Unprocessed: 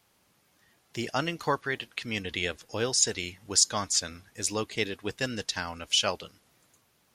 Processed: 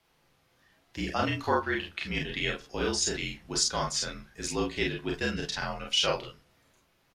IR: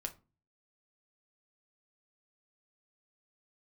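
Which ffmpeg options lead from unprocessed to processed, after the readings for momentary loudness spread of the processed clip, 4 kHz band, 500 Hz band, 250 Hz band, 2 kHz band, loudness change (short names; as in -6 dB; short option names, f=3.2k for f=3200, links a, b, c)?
8 LU, -1.0 dB, +0.5 dB, +2.5 dB, +1.0 dB, -1.5 dB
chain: -filter_complex "[0:a]afreqshift=-47,aecho=1:1:33|47:0.708|0.668,asplit=2[a][b];[1:a]atrim=start_sample=2205,lowpass=5.5k[c];[b][c]afir=irnorm=-1:irlink=0,volume=4.5dB[d];[a][d]amix=inputs=2:normalize=0,volume=-9dB"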